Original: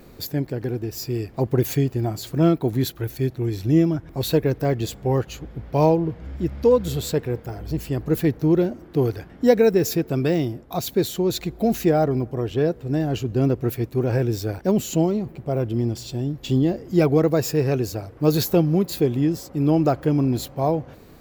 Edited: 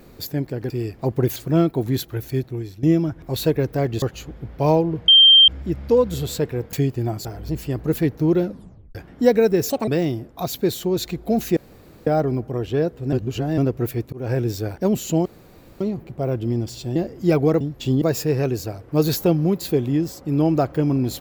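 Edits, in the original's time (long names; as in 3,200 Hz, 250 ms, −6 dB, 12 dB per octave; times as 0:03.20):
0:00.70–0:01.05: remove
0:01.71–0:02.23: move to 0:07.47
0:03.25–0:03.70: fade out, to −15.5 dB
0:04.89–0:05.16: remove
0:06.22: insert tone 3,160 Hz −7 dBFS 0.40 s
0:08.65: tape stop 0.52 s
0:09.92–0:10.21: play speed 165%
0:11.90: splice in room tone 0.50 s
0:12.96–0:13.41: reverse
0:13.96–0:14.26: fade in equal-power
0:15.09: splice in room tone 0.55 s
0:16.24–0:16.65: move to 0:17.30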